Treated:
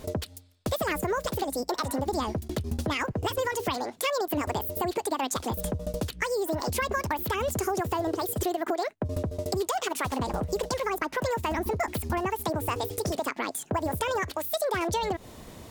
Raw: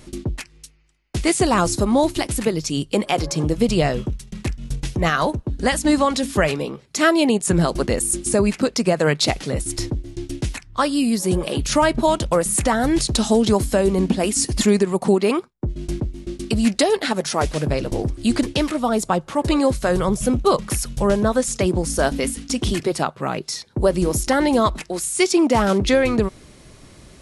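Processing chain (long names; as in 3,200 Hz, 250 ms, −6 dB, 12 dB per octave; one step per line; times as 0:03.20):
downward compressor 4 to 1, threshold −27 dBFS, peak gain reduction 13.5 dB
wrong playback speed 45 rpm record played at 78 rpm
high-shelf EQ 9,600 Hz −5 dB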